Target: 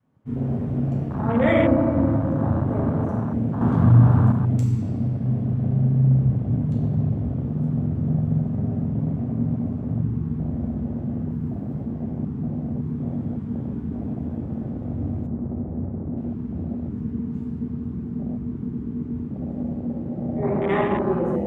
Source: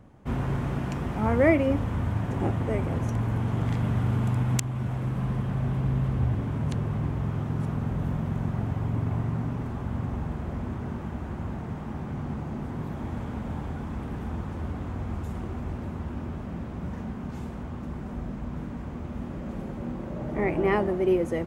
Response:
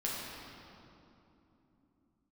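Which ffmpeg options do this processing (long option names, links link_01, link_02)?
-filter_complex "[0:a]asettb=1/sr,asplit=3[link_01][link_02][link_03];[link_01]atrim=end=11.304[link_04];[link_02]atrim=start=11.3:end=11.82,asetpts=PTS-STARTPTS,afade=type=in:duration=0.004:curve=qsin,afade=type=out:start_time=0.516:duration=0.004:curve=qsin,acrusher=bits=8:mode=log:mix=0:aa=0.000001[link_05];[link_03]atrim=start=11.816[link_06];[link_04][link_05]acrossfade=duration=0.004:curve1=hsin:curve2=qsin[link_07];[link_07][link_06]acrossfade=duration=0.004:curve1=qsin:curve2=hsin[link_08];[1:a]atrim=start_sample=2205[link_09];[link_08][link_09]afir=irnorm=-1:irlink=0,adynamicequalizer=threshold=0.0224:dfrequency=370:dqfactor=1.9:tfrequency=370:tqfactor=1.9:attack=5:release=100:ratio=0.375:range=2.5:mode=cutabove:tftype=bell,highpass=98,asettb=1/sr,asplit=3[link_10][link_11][link_12];[link_10]atrim=end=3.614[link_13];[link_11]atrim=start=3.61:end=4.32,asetpts=PTS-STARTPTS,afade=type=in:duration=0.004:curve=qsin,afade=type=out:start_time=0.706:duration=0.004:curve=qsin,acontrast=34[link_14];[link_12]atrim=start=4.316[link_15];[link_13][link_14]acrossfade=duration=0.004:curve1=hsin:curve2=qsin[link_16];[link_16][link_15]acrossfade=duration=0.004:curve1=qsin:curve2=hsin,asplit=3[link_17][link_18][link_19];[link_17]afade=type=out:start_time=15.26:duration=0.02[link_20];[link_18]lowpass=1500,afade=type=in:start_time=15.26:duration=0.02,afade=type=out:start_time=16.16:duration=0.02[link_21];[link_19]afade=type=in:start_time=16.16:duration=0.02[link_22];[link_20][link_21][link_22]amix=inputs=3:normalize=0,afwtdn=0.0447"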